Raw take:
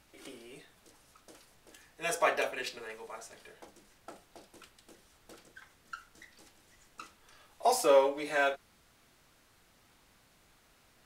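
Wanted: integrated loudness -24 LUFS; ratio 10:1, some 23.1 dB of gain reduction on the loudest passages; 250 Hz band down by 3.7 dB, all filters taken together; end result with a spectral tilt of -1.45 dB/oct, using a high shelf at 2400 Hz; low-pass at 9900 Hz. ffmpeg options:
-af "lowpass=9.9k,equalizer=f=250:t=o:g=-5,highshelf=f=2.4k:g=4,acompressor=threshold=-44dB:ratio=10,volume=27dB"

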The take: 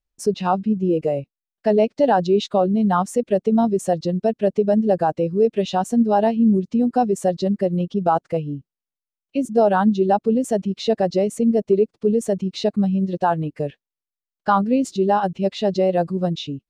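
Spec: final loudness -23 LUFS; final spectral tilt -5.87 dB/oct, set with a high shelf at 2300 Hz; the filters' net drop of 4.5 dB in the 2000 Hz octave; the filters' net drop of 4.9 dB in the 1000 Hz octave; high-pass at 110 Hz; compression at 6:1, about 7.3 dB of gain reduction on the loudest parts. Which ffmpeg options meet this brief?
-af "highpass=110,equalizer=f=1k:t=o:g=-7,equalizer=f=2k:t=o:g=-5.5,highshelf=f=2.3k:g=4.5,acompressor=threshold=-21dB:ratio=6,volume=3.5dB"

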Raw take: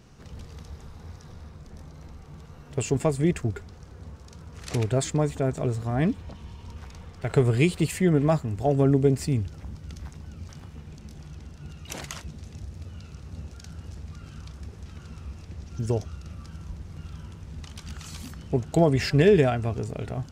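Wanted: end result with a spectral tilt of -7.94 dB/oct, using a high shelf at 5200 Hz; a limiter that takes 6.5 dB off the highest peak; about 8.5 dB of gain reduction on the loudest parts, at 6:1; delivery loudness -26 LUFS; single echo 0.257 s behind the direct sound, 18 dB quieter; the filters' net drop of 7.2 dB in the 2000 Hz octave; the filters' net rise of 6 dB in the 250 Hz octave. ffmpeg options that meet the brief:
-af "equalizer=f=250:t=o:g=8.5,equalizer=f=2k:t=o:g=-8.5,highshelf=f=5.2k:g=-4.5,acompressor=threshold=-20dB:ratio=6,alimiter=limit=-18dB:level=0:latency=1,aecho=1:1:257:0.126,volume=6dB"

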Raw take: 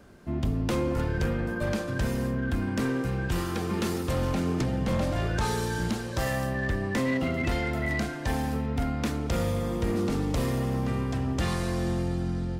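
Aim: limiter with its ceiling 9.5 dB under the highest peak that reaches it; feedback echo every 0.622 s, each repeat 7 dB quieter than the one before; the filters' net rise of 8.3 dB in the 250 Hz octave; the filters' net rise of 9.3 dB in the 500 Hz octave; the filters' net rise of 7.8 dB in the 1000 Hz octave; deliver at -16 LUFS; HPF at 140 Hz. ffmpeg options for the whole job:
-af "highpass=140,equalizer=f=250:t=o:g=8.5,equalizer=f=500:t=o:g=7,equalizer=f=1k:t=o:g=7,alimiter=limit=-18dB:level=0:latency=1,aecho=1:1:622|1244|1866|2488|3110:0.447|0.201|0.0905|0.0407|0.0183,volume=9.5dB"

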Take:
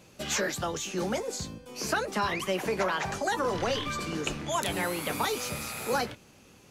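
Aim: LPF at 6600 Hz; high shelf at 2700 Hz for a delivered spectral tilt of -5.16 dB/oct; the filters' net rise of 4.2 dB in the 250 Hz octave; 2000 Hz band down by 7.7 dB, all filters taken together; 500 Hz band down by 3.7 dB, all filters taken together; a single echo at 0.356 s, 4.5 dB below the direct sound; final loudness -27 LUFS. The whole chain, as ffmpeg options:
-af "lowpass=6.6k,equalizer=f=250:t=o:g=8,equalizer=f=500:t=o:g=-6.5,equalizer=f=2k:t=o:g=-8,highshelf=f=2.7k:g=-5,aecho=1:1:356:0.596,volume=5dB"

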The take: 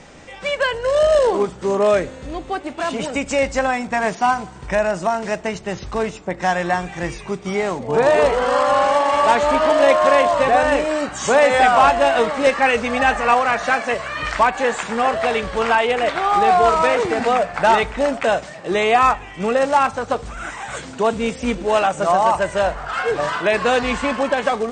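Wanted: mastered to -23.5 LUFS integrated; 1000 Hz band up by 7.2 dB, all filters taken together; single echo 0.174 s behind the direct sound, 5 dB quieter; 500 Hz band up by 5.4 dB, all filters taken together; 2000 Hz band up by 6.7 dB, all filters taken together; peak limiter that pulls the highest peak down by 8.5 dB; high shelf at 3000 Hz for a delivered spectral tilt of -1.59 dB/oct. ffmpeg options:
-af "equalizer=f=500:t=o:g=4,equalizer=f=1k:t=o:g=6.5,equalizer=f=2k:t=o:g=4.5,highshelf=f=3k:g=4.5,alimiter=limit=-4dB:level=0:latency=1,aecho=1:1:174:0.562,volume=-10dB"

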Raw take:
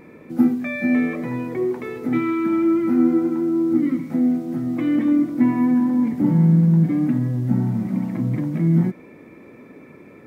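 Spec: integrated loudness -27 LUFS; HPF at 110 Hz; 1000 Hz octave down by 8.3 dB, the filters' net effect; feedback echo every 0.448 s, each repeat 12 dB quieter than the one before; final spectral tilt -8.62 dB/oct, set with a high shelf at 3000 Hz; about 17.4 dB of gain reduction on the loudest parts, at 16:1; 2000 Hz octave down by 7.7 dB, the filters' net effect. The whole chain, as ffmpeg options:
-af "highpass=110,equalizer=f=1k:t=o:g=-9,equalizer=f=2k:t=o:g=-5,highshelf=f=3k:g=-5,acompressor=threshold=-30dB:ratio=16,aecho=1:1:448|896|1344:0.251|0.0628|0.0157,volume=7dB"

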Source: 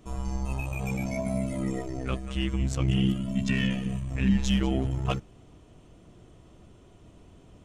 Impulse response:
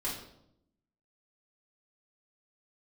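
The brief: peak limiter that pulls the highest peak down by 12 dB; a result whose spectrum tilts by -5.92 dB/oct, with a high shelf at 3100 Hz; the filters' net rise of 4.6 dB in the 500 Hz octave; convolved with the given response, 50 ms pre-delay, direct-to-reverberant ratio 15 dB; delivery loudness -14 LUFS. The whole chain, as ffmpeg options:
-filter_complex "[0:a]equalizer=f=500:t=o:g=6,highshelf=f=3.1k:g=7,alimiter=limit=-20dB:level=0:latency=1,asplit=2[a][b];[1:a]atrim=start_sample=2205,adelay=50[c];[b][c]afir=irnorm=-1:irlink=0,volume=-19dB[d];[a][d]amix=inputs=2:normalize=0,volume=16.5dB"

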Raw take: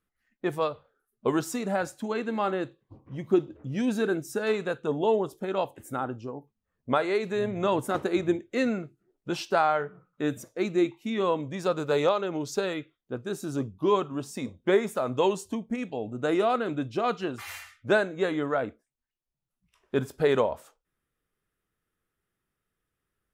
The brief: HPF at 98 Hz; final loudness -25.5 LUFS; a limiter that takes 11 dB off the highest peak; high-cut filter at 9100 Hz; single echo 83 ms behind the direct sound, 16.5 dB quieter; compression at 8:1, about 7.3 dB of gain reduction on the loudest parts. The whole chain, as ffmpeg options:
-af "highpass=98,lowpass=9.1k,acompressor=threshold=-25dB:ratio=8,alimiter=level_in=0.5dB:limit=-24dB:level=0:latency=1,volume=-0.5dB,aecho=1:1:83:0.15,volume=10dB"

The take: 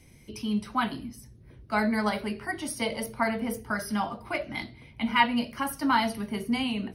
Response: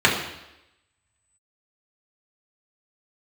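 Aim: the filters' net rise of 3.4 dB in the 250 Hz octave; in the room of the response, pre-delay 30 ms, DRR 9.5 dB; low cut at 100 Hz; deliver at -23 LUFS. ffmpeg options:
-filter_complex "[0:a]highpass=100,equalizer=f=250:t=o:g=4,asplit=2[a][b];[1:a]atrim=start_sample=2205,adelay=30[c];[b][c]afir=irnorm=-1:irlink=0,volume=-31dB[d];[a][d]amix=inputs=2:normalize=0,volume=4dB"

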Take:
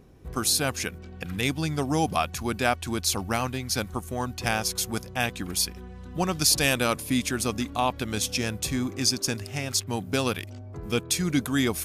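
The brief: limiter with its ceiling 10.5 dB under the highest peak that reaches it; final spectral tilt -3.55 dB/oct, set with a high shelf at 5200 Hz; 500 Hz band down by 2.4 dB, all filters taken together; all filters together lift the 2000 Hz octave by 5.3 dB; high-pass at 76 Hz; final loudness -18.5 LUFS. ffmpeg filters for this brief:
-af "highpass=76,equalizer=f=500:t=o:g=-3.5,equalizer=f=2k:t=o:g=8.5,highshelf=f=5.2k:g=-7.5,volume=10.5dB,alimiter=limit=-5.5dB:level=0:latency=1"

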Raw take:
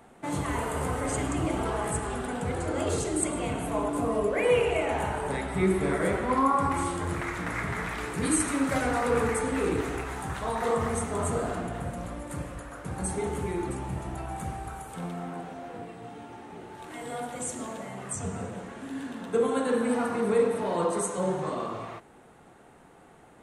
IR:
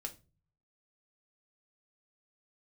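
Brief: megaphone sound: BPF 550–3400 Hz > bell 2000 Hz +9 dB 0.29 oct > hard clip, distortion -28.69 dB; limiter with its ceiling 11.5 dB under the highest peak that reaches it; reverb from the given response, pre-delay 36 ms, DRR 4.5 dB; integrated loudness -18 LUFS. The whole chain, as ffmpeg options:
-filter_complex "[0:a]alimiter=level_in=0.5dB:limit=-24dB:level=0:latency=1,volume=-0.5dB,asplit=2[a][b];[1:a]atrim=start_sample=2205,adelay=36[c];[b][c]afir=irnorm=-1:irlink=0,volume=-2.5dB[d];[a][d]amix=inputs=2:normalize=0,highpass=550,lowpass=3.4k,equalizer=f=2k:t=o:w=0.29:g=9,asoftclip=type=hard:threshold=-25.5dB,volume=17.5dB"

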